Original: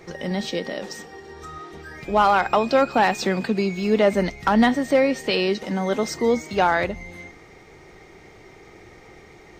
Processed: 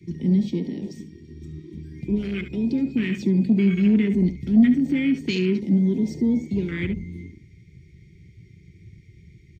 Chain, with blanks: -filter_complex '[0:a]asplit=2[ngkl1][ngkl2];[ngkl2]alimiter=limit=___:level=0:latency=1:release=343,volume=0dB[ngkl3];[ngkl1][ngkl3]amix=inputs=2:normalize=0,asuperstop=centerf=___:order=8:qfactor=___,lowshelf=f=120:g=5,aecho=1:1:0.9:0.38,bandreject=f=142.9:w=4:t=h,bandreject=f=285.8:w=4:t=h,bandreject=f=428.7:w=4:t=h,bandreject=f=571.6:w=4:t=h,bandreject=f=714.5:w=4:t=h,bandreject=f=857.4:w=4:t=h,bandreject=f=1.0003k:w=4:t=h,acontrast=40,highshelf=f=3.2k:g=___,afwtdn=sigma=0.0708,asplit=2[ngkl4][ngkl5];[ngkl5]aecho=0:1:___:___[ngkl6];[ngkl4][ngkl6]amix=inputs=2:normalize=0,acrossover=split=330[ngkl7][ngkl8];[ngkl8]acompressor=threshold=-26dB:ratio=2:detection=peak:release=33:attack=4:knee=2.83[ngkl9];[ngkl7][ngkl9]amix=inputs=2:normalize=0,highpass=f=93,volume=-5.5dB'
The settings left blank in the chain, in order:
-16dB, 880, 0.52, -4.5, 70, 0.211